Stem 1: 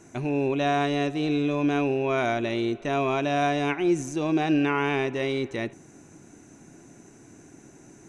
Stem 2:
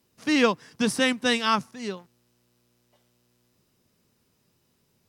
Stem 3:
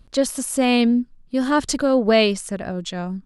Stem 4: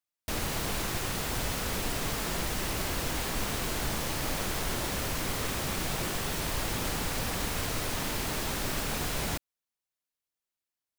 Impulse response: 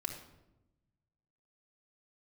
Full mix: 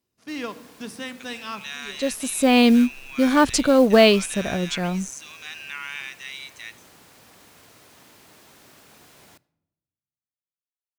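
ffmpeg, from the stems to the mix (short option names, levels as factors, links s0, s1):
-filter_complex "[0:a]agate=range=0.0224:threshold=0.0141:ratio=3:detection=peak,highpass=f=1400:w=0.5412,highpass=f=1400:w=1.3066,highshelf=f=3400:g=11,adelay=1050,volume=0.562[s0];[1:a]volume=0.188,asplit=3[s1][s2][s3];[s2]volume=0.596[s4];[2:a]acrusher=bits=7:mode=log:mix=0:aa=0.000001,adelay=1850,volume=1.26[s5];[3:a]highpass=97,lowshelf=f=150:g=-6,volume=0.112,asplit=2[s6][s7];[s7]volume=0.178[s8];[s3]apad=whole_len=225202[s9];[s5][s9]sidechaincompress=threshold=0.00355:ratio=8:attack=28:release=771[s10];[4:a]atrim=start_sample=2205[s11];[s4][s8]amix=inputs=2:normalize=0[s12];[s12][s11]afir=irnorm=-1:irlink=0[s13];[s0][s1][s10][s6][s13]amix=inputs=5:normalize=0"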